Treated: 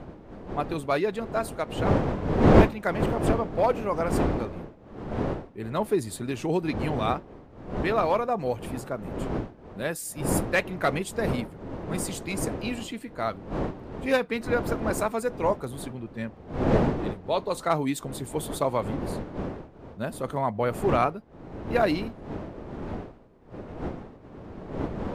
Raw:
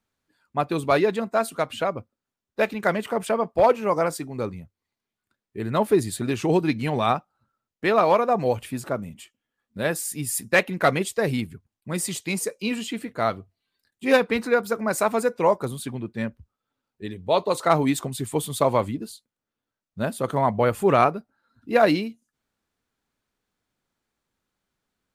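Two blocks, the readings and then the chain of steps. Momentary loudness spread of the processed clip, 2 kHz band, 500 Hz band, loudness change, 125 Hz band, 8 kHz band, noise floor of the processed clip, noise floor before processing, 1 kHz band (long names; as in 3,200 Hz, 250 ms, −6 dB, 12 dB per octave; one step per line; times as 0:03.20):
14 LU, −5.0 dB, −4.0 dB, −4.0 dB, +1.5 dB, −5.5 dB, −48 dBFS, below −85 dBFS, −4.5 dB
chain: wind on the microphone 430 Hz −25 dBFS
level −5.5 dB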